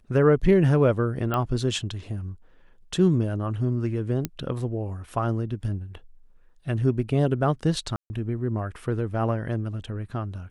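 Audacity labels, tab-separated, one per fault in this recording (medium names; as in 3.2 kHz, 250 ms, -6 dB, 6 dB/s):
1.340000	1.340000	pop -14 dBFS
4.250000	4.250000	pop -12 dBFS
7.960000	8.100000	dropout 140 ms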